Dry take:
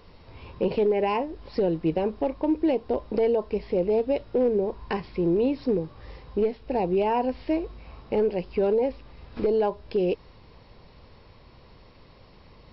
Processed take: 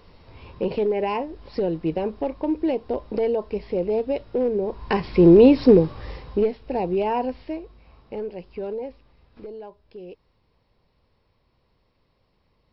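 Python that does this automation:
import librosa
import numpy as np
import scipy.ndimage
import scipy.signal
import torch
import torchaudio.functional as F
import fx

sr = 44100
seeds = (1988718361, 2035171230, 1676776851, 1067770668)

y = fx.gain(x, sr, db=fx.line((4.59, 0.0), (5.24, 11.5), (5.79, 11.5), (6.64, 0.5), (7.23, 0.5), (7.63, -7.5), (8.79, -7.5), (9.63, -15.5)))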